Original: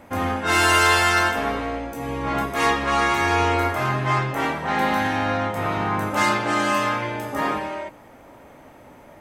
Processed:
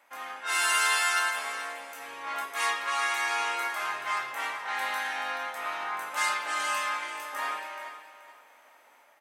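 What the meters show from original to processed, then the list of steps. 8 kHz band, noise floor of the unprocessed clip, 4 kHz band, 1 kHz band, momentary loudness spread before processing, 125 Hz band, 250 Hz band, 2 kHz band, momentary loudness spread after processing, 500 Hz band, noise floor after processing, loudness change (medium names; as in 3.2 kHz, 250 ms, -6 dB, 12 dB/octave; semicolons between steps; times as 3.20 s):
-2.5 dB, -47 dBFS, -5.5 dB, -9.0 dB, 11 LU, under -40 dB, -28.0 dB, -6.0 dB, 14 LU, -17.0 dB, -59 dBFS, -8.0 dB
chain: octave divider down 2 oct, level -1 dB; level rider gain up to 4.5 dB; dynamic bell 9.4 kHz, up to +7 dB, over -45 dBFS, Q 1.7; high-pass 1.1 kHz 12 dB/octave; on a send: feedback delay 429 ms, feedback 26%, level -12 dB; on the sum: trim -9 dB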